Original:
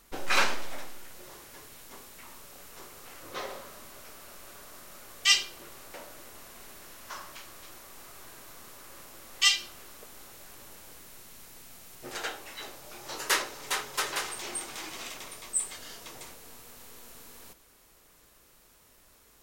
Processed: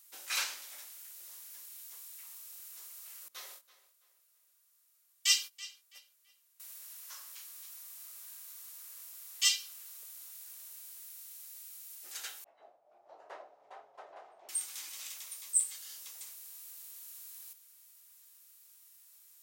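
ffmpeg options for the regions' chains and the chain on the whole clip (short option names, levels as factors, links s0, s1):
-filter_complex "[0:a]asettb=1/sr,asplit=3[s0][s1][s2];[s0]atrim=end=3.284[s3];[s1]atrim=start=3.28:end=6.6,asetpts=PTS-STARTPTS,afade=t=in:d=0.004:c=qsin,afade=t=out:st=3.316:d=0.004:c=qsin,agate=range=0.0891:threshold=0.00794:ratio=16:release=100:detection=peak,asplit=2[s4][s5];[s5]adelay=330,lowpass=f=4800:p=1,volume=0.158,asplit=2[s6][s7];[s7]adelay=330,lowpass=f=4800:p=1,volume=0.33,asplit=2[s8][s9];[s9]adelay=330,lowpass=f=4800:p=1,volume=0.33[s10];[s4][s6][s8][s10]amix=inputs=4:normalize=0,atrim=end_sample=146412[s11];[s2]atrim=start=6.596[s12];[s3][s11]acrossfade=d=0.004:c1=hsin:c2=qsin[s13];[s13][s12]acrossfade=d=0.004:c1=qsin:c2=hsin,asettb=1/sr,asplit=3[s14][s15][s16];[s14]atrim=end=12.444[s17];[s15]atrim=start=12.44:end=14.49,asetpts=PTS-STARTPTS,afade=t=in:d=0.004:c=qsin,afade=t=out:st=2.046:d=0.004:c=qsin,agate=range=0.0224:threshold=0.00708:ratio=3:release=100:detection=peak,lowpass=f=680:t=q:w=7.2[s18];[s16]atrim=start=14.486[s19];[s17][s18]acrossfade=d=0.004:c1=hsin:c2=qsin[s20];[s20][s19]acrossfade=d=0.004:c1=qsin:c2=hsin,aderivative,bandreject=f=60:t=h:w=6,bandreject=f=120:t=h:w=6,bandreject=f=180:t=h:w=6,bandreject=f=240:t=h:w=6"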